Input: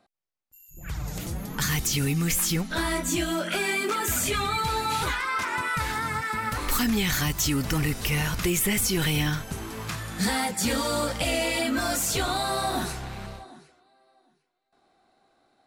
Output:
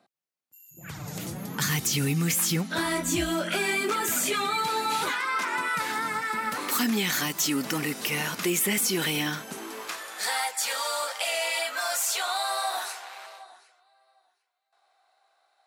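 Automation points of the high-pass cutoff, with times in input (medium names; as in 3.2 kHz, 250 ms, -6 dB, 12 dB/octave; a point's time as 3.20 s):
high-pass 24 dB/octave
2.83 s 120 Hz
3.18 s 49 Hz
4.25 s 200 Hz
9.45 s 200 Hz
10.41 s 660 Hz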